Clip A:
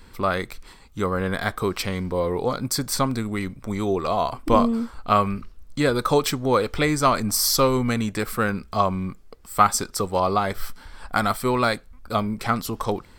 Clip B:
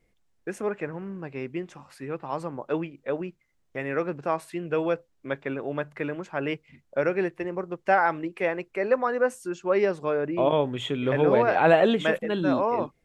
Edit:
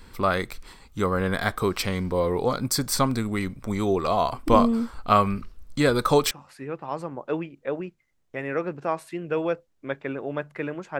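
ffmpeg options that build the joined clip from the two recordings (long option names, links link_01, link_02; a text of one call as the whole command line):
ffmpeg -i cue0.wav -i cue1.wav -filter_complex "[0:a]apad=whole_dur=10.99,atrim=end=10.99,atrim=end=6.312[link_01];[1:a]atrim=start=1.718:end=6.4[link_02];[link_01][link_02]acrossfade=duration=0.004:curve1=hsin:curve2=hsin" out.wav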